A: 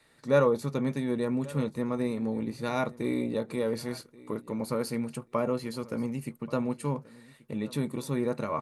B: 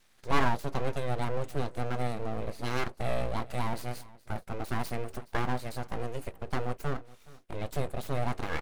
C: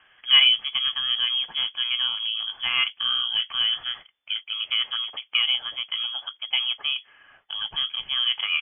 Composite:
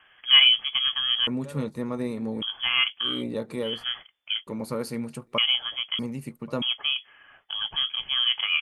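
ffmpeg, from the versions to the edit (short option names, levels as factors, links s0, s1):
-filter_complex "[0:a]asplit=4[s0][s1][s2][s3];[2:a]asplit=5[s4][s5][s6][s7][s8];[s4]atrim=end=1.272[s9];[s0]atrim=start=1.268:end=2.422[s10];[s5]atrim=start=2.418:end=3.24[s11];[s1]atrim=start=3:end=3.86[s12];[s6]atrim=start=3.62:end=4.472[s13];[s2]atrim=start=4.468:end=5.382[s14];[s7]atrim=start=5.378:end=5.992[s15];[s3]atrim=start=5.988:end=6.622[s16];[s8]atrim=start=6.618[s17];[s9][s10]acrossfade=d=0.004:c1=hsin:c2=hsin[s18];[s18][s11]acrossfade=d=0.004:c1=hsin:c2=hsin[s19];[s19][s12]acrossfade=d=0.24:c1=tri:c2=tri[s20];[s20][s13]acrossfade=d=0.24:c1=tri:c2=tri[s21];[s21][s14]acrossfade=d=0.004:c1=hsin:c2=hsin[s22];[s22][s15]acrossfade=d=0.004:c1=hsin:c2=hsin[s23];[s23][s16]acrossfade=d=0.004:c1=hsin:c2=hsin[s24];[s24][s17]acrossfade=d=0.004:c1=hsin:c2=hsin"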